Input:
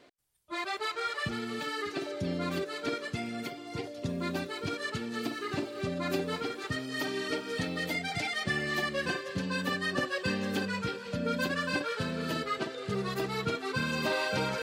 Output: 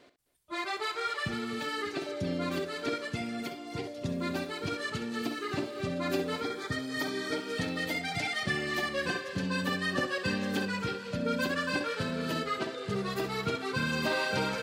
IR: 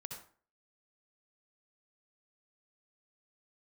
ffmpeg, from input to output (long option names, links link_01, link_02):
-filter_complex "[0:a]asettb=1/sr,asplit=3[link_01][link_02][link_03];[link_01]atrim=end=6.404[link_04];[link_02]atrim=start=6.4:end=7.36,asetpts=PTS-STARTPTS,afade=type=in:duration=0.004:curve=qsin,afade=type=out:start_time=0.956:duration=0.004:curve=qsin,asuperstop=centerf=2800:order=8:qfactor=5[link_05];[link_03]atrim=start=7.356[link_06];[link_04][link_05]acrossfade=duration=0.004:curve1=hsin:curve2=qsin[link_07];[link_07][link_06]acrossfade=duration=0.004:curve1=qsin:curve2=hsin,asplit=2[link_08][link_09];[link_09]aecho=0:1:65|261:0.266|0.112[link_10];[link_08][link_10]amix=inputs=2:normalize=0"